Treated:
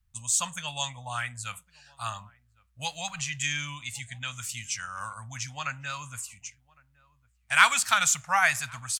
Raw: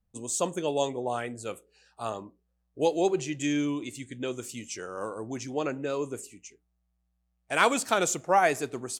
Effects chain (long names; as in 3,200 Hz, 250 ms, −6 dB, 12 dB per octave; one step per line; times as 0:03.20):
Chebyshev band-stop filter 100–1,400 Hz, order 2
slap from a distant wall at 190 metres, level −25 dB
level +7 dB